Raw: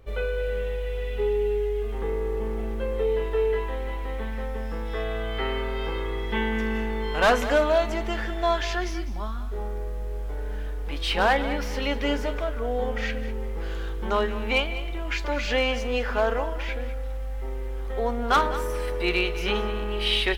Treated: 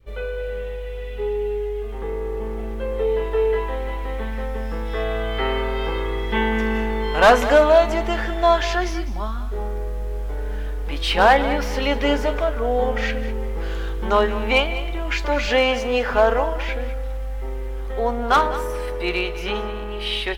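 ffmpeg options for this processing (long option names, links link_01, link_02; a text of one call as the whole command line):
ffmpeg -i in.wav -filter_complex "[0:a]asettb=1/sr,asplit=3[link_01][link_02][link_03];[link_01]atrim=end=15.494[link_04];[link_02]atrim=start=15.49:end=16.14,asetpts=PTS-STARTPTS,afade=type=in:duration=0.004:curve=qsin,afade=type=out:start_time=0.646:duration=0.004:curve=qsin,highpass=62[link_05];[link_03]atrim=start=16.136[link_06];[link_04][link_05]acrossfade=duration=0.004:curve1=hsin:curve2=qsin[link_07];[link_07][link_06]acrossfade=duration=0.004:curve1=qsin:curve2=hsin,adynamicequalizer=threshold=0.0224:dfrequency=770:dqfactor=1:tfrequency=770:tqfactor=1:attack=5:release=100:ratio=0.375:range=2:mode=boostabove:tftype=bell,dynaudnorm=framelen=940:gausssize=7:maxgain=7dB,volume=-1.5dB" out.wav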